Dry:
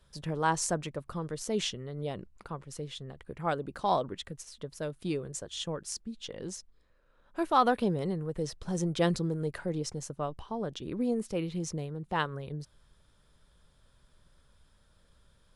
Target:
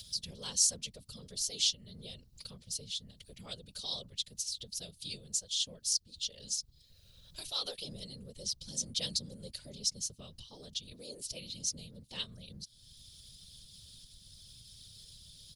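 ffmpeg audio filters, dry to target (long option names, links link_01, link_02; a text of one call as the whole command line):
ffmpeg -i in.wav -af "firequalizer=gain_entry='entry(120,0);entry(300,-29);entry(480,-8);entry(740,-22);entry(1500,-22);entry(3000,-2);entry(4300,5);entry(7700,-7)':delay=0.05:min_phase=1,afftfilt=real='hypot(re,im)*cos(2*PI*random(0))':imag='hypot(re,im)*sin(2*PI*random(1))':win_size=512:overlap=0.75,acompressor=mode=upward:threshold=-44dB:ratio=2.5,crystalizer=i=8:c=0,volume=-2.5dB" out.wav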